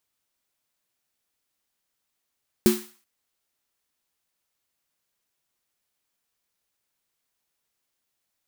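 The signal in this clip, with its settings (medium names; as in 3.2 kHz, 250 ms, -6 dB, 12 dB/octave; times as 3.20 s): snare drum length 0.38 s, tones 220 Hz, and 360 Hz, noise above 800 Hz, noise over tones -10 dB, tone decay 0.29 s, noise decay 0.46 s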